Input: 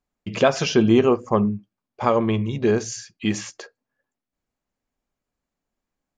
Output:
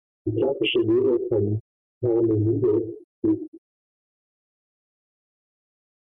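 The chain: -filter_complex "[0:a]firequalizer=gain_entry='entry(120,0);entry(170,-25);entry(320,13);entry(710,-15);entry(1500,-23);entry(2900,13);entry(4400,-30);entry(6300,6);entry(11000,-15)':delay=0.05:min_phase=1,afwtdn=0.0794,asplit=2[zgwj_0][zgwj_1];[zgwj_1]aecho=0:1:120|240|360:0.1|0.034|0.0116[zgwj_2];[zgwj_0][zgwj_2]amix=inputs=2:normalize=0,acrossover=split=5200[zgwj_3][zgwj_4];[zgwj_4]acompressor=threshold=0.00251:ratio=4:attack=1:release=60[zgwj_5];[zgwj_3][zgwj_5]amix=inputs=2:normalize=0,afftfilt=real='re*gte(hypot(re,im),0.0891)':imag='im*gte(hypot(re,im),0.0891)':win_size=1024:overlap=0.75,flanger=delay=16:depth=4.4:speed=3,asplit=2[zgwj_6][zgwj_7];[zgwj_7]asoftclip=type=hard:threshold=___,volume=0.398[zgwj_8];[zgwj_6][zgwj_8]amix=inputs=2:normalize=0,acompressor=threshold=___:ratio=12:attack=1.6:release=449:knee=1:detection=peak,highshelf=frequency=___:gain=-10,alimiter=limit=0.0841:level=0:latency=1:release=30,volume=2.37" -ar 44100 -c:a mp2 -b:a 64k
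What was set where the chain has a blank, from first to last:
0.188, 0.1, 4400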